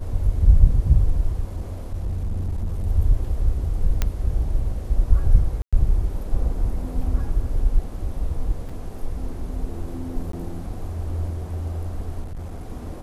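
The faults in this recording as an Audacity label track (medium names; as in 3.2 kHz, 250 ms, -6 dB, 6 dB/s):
1.560000	2.860000	clipped -21.5 dBFS
4.020000	4.020000	pop -7 dBFS
5.620000	5.730000	dropout 106 ms
8.690000	8.690000	dropout 4.8 ms
10.320000	10.330000	dropout 13 ms
12.220000	12.700000	clipped -28.5 dBFS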